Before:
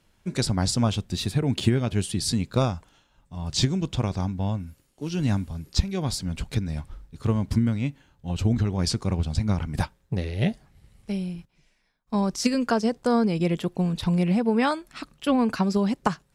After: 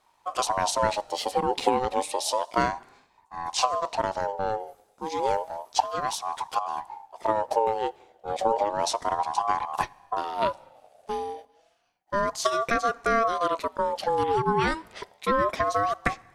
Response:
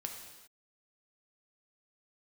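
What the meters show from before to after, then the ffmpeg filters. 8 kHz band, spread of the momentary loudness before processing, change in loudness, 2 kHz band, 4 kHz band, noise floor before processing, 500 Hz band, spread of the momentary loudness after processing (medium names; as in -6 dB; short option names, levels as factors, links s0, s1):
-1.0 dB, 10 LU, -1.5 dB, +4.0 dB, -2.5 dB, -66 dBFS, +3.0 dB, 10 LU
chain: -filter_complex "[0:a]asplit=2[s0][s1];[1:a]atrim=start_sample=2205[s2];[s1][s2]afir=irnorm=-1:irlink=0,volume=0.15[s3];[s0][s3]amix=inputs=2:normalize=0,aeval=exprs='val(0)*sin(2*PI*780*n/s+780*0.2/0.31*sin(2*PI*0.31*n/s))':c=same"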